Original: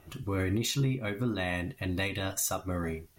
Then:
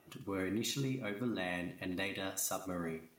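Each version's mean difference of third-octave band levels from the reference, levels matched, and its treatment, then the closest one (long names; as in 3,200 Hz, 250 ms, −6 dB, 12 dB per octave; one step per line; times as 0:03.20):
3.5 dB: Chebyshev high-pass filter 200 Hz, order 2
feedback echo at a low word length 91 ms, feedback 35%, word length 9 bits, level −13 dB
level −5 dB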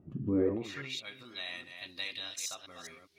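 10.5 dB: delay that plays each chunk backwards 205 ms, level −6.5 dB
tilt shelving filter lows +3.5 dB, about 1,100 Hz
band-pass filter sweep 200 Hz → 4,100 Hz, 0:00.27–0:00.99
level +5.5 dB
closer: first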